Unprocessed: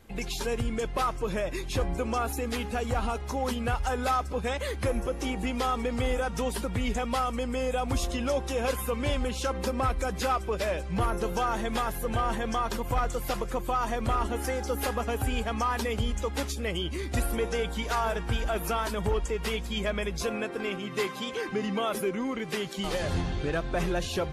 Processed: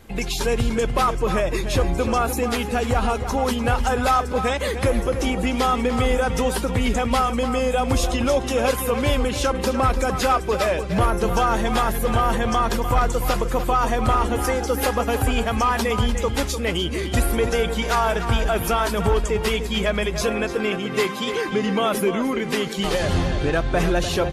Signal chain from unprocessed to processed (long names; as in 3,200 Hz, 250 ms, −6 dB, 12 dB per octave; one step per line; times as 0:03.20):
slap from a distant wall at 51 metres, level −9 dB
level +8 dB